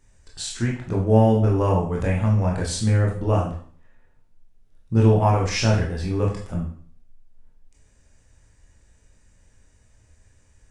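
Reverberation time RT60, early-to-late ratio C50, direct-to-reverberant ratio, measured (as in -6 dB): 0.50 s, 5.5 dB, -3.0 dB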